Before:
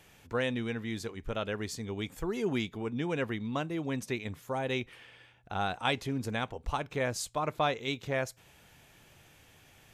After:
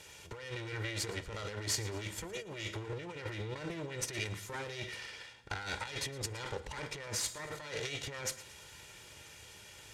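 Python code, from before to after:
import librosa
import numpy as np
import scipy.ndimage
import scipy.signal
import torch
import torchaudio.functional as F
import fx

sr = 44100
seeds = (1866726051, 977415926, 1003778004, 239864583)

y = fx.lower_of_two(x, sr, delay_ms=2.1)
y = scipy.signal.sosfilt(scipy.signal.butter(2, 45.0, 'highpass', fs=sr, output='sos'), y)
y = fx.rev_fdn(y, sr, rt60_s=0.39, lf_ratio=1.0, hf_ratio=0.95, size_ms=29.0, drr_db=11.0)
y = fx.over_compress(y, sr, threshold_db=-41.0, ratio=-1.0)
y = fx.dynamic_eq(y, sr, hz=1900.0, q=2.6, threshold_db=-59.0, ratio=4.0, max_db=5)
y = scipy.signal.sosfilt(scipy.signal.butter(2, 8400.0, 'lowpass', fs=sr, output='sos'), y)
y = fx.high_shelf(y, sr, hz=3500.0, db=10.0)
y = fx.echo_feedback(y, sr, ms=114, feedback_pct=49, wet_db=-18)
y = y * librosa.db_to_amplitude(-1.5)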